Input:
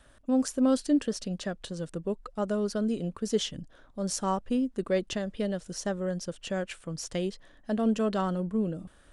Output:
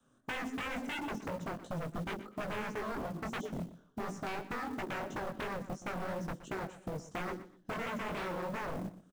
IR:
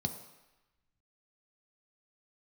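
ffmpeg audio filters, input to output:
-filter_complex "[1:a]atrim=start_sample=2205,asetrate=66150,aresample=44100[link_01];[0:a][link_01]afir=irnorm=-1:irlink=0,afwtdn=0.0631,acrossover=split=140|510|1800[link_02][link_03][link_04][link_05];[link_02]acompressor=threshold=-41dB:ratio=4[link_06];[link_03]acompressor=threshold=-21dB:ratio=4[link_07];[link_04]acompressor=threshold=-34dB:ratio=4[link_08];[link_05]acompressor=threshold=-54dB:ratio=4[link_09];[link_06][link_07][link_08][link_09]amix=inputs=4:normalize=0,asettb=1/sr,asplit=3[link_10][link_11][link_12];[link_10]atrim=end=2.614[link_13];[link_11]atrim=start=2.61:end=4.84,asetpts=PTS-STARTPTS,afade=type=in:duration=0.004:curve=qsin,afade=type=out:start_time=2.226:duration=0.004:curve=qsin,lowshelf=frequency=330:gain=-3[link_14];[link_12]atrim=start=4.836[link_15];[link_13][link_14]acrossfade=duration=0.004:curve1=hsin:curve2=qsin[link_16];[link_16][link_15]acrossfade=duration=0.004:curve1=qsin:curve2=hsin,aeval=exprs='0.0299*(abs(mod(val(0)/0.0299+3,4)-2)-1)':channel_layout=same,flanger=delay=16:depth=7.8:speed=2.9,acompressor=threshold=-44dB:ratio=3,acrusher=bits=6:mode=log:mix=0:aa=0.000001,aecho=1:1:121|242:0.178|0.0391,volume=6.5dB"

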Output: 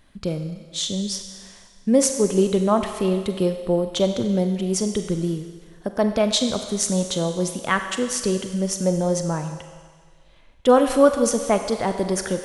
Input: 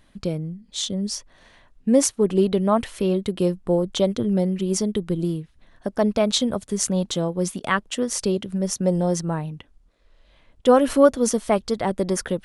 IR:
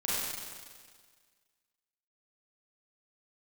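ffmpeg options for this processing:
-filter_complex "[0:a]asplit=2[link_01][link_02];[link_02]equalizer=frequency=190:width_type=o:width=2.1:gain=-10[link_03];[1:a]atrim=start_sample=2205[link_04];[link_03][link_04]afir=irnorm=-1:irlink=0,volume=-11.5dB[link_05];[link_01][link_05]amix=inputs=2:normalize=0,volume=-1dB"

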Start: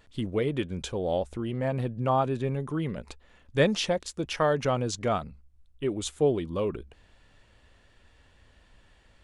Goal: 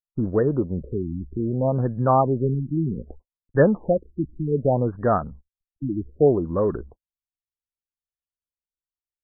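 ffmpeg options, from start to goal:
ffmpeg -i in.wav -af "acontrast=82,agate=range=-56dB:threshold=-40dB:ratio=16:detection=peak,afftfilt=real='re*lt(b*sr/1024,340*pow(1900/340,0.5+0.5*sin(2*PI*0.64*pts/sr)))':imag='im*lt(b*sr/1024,340*pow(1900/340,0.5+0.5*sin(2*PI*0.64*pts/sr)))':win_size=1024:overlap=0.75" out.wav

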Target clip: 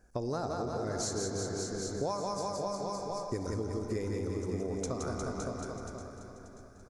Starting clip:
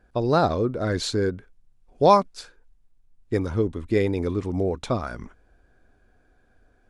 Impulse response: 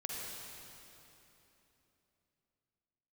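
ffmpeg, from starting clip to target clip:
-filter_complex "[0:a]highshelf=frequency=4600:width_type=q:width=3:gain=10.5,aecho=1:1:170|357|562.7|789|1038:0.631|0.398|0.251|0.158|0.1,asplit=2[link_01][link_02];[1:a]atrim=start_sample=2205,asetrate=52920,aresample=44100,lowpass=4600[link_03];[link_02][link_03]afir=irnorm=-1:irlink=0,volume=-4.5dB[link_04];[link_01][link_04]amix=inputs=2:normalize=0,acompressor=threshold=-27dB:ratio=6,asplit=2[link_05][link_06];[link_06]aecho=0:1:584|1168|1752|2336:0.266|0.109|0.0447|0.0183[link_07];[link_05][link_07]amix=inputs=2:normalize=0,volume=-5.5dB"

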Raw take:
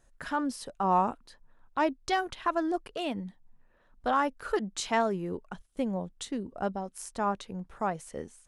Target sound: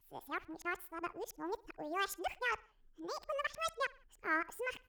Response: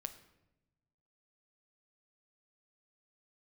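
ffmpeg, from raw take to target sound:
-filter_complex "[0:a]areverse,asplit=2[link_01][link_02];[link_02]adelay=98,lowpass=frequency=4500:poles=1,volume=-23dB,asplit=2[link_03][link_04];[link_04]adelay=98,lowpass=frequency=4500:poles=1,volume=0.5,asplit=2[link_05][link_06];[link_06]adelay=98,lowpass=frequency=4500:poles=1,volume=0.5[link_07];[link_01][link_03][link_05][link_07]amix=inputs=4:normalize=0,asetrate=76440,aresample=44100,volume=-9dB"

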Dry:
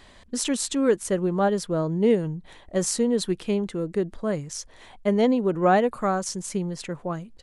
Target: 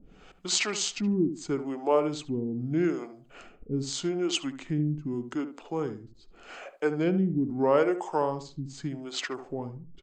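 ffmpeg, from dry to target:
ffmpeg -i in.wav -filter_complex "[0:a]lowshelf=frequency=170:gain=-6.5,asplit=2[link_01][link_02];[link_02]acompressor=threshold=-36dB:ratio=6,volume=3dB[link_03];[link_01][link_03]amix=inputs=2:normalize=0,acrossover=split=440[link_04][link_05];[link_04]aeval=exprs='val(0)*(1-1/2+1/2*cos(2*PI*1.1*n/s))':channel_layout=same[link_06];[link_05]aeval=exprs='val(0)*(1-1/2-1/2*cos(2*PI*1.1*n/s))':channel_layout=same[link_07];[link_06][link_07]amix=inputs=2:normalize=0,asetrate=32667,aresample=44100,equalizer=frequency=100:width=2.2:gain=-15,bandreject=frequency=5600:width=7.4,asplit=2[link_08][link_09];[link_09]adelay=73,lowpass=frequency=1300:poles=1,volume=-9.5dB,asplit=2[link_10][link_11];[link_11]adelay=73,lowpass=frequency=1300:poles=1,volume=0.24,asplit=2[link_12][link_13];[link_13]adelay=73,lowpass=frequency=1300:poles=1,volume=0.24[link_14];[link_10][link_12][link_14]amix=inputs=3:normalize=0[link_15];[link_08][link_15]amix=inputs=2:normalize=0" out.wav

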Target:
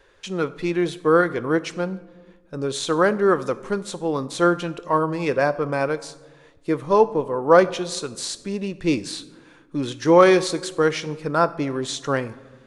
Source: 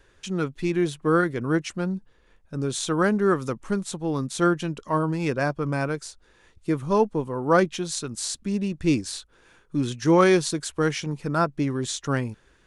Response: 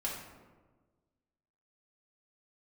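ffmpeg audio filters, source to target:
-filter_complex "[0:a]equalizer=frequency=500:width_type=o:width=1:gain=10,equalizer=frequency=1000:width_type=o:width=1:gain=6,equalizer=frequency=2000:width_type=o:width=1:gain=5,equalizer=frequency=4000:width_type=o:width=1:gain=6,asplit=2[link_01][link_02];[1:a]atrim=start_sample=2205,highshelf=frequency=5800:gain=10.5[link_03];[link_02][link_03]afir=irnorm=-1:irlink=0,volume=-15dB[link_04];[link_01][link_04]amix=inputs=2:normalize=0,volume=-5dB"

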